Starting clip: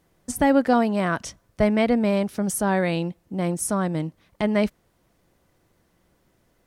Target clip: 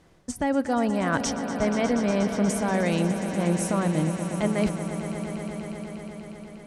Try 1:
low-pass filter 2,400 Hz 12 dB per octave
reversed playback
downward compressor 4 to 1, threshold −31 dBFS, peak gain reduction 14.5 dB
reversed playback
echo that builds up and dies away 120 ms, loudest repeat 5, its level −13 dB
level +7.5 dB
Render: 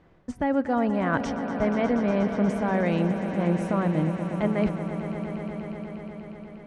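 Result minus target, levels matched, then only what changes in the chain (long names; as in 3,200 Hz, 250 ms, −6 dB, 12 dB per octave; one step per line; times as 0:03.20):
8,000 Hz band −17.0 dB
change: low-pass filter 7,600 Hz 12 dB per octave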